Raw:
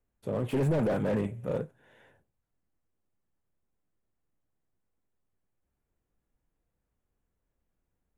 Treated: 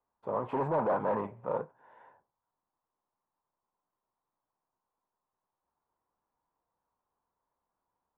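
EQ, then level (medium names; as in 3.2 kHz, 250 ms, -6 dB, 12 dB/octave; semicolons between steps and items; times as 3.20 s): resonant low-pass 980 Hz, resonance Q 4.9; tilt EQ +4 dB/octave; 0.0 dB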